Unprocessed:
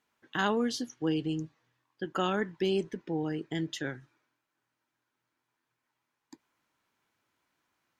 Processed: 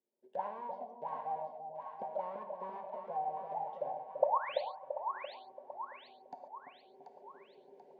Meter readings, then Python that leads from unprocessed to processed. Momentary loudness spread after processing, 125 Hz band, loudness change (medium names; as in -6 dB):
21 LU, -25.0 dB, -7.5 dB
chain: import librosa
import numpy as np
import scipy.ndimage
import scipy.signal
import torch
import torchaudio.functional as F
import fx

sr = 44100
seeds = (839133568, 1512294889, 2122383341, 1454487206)

p1 = fx.halfwave_hold(x, sr)
p2 = fx.recorder_agc(p1, sr, target_db=-24.5, rise_db_per_s=24.0, max_gain_db=30)
p3 = fx.env_lowpass_down(p2, sr, base_hz=1900.0, full_db=-26.5)
p4 = fx.spec_paint(p3, sr, seeds[0], shape='rise', start_s=4.22, length_s=0.39, low_hz=470.0, high_hz=4700.0, level_db=-19.0)
p5 = fx.auto_wah(p4, sr, base_hz=350.0, top_hz=1100.0, q=19.0, full_db=-21.5, direction='up')
p6 = fx.fixed_phaser(p5, sr, hz=330.0, stages=6)
p7 = fx.small_body(p6, sr, hz=(580.0, 910.0), ring_ms=45, db=11)
p8 = p7 + fx.echo_split(p7, sr, split_hz=760.0, low_ms=338, high_ms=735, feedback_pct=52, wet_db=-5, dry=0)
p9 = fx.rev_gated(p8, sr, seeds[1], gate_ms=160, shape='flat', drr_db=7.5)
y = p9 * 10.0 ** (6.5 / 20.0)